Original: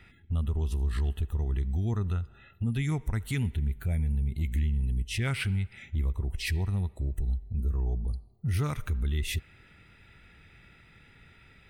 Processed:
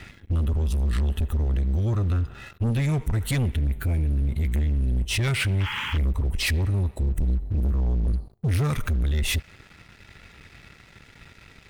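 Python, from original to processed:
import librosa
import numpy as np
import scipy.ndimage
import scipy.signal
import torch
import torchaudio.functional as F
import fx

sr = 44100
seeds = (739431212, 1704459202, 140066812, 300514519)

y = fx.spec_paint(x, sr, seeds[0], shape='noise', start_s=5.6, length_s=0.38, low_hz=830.0, high_hz=3400.0, level_db=-43.0)
y = fx.rider(y, sr, range_db=4, speed_s=0.5)
y = fx.leveller(y, sr, passes=3)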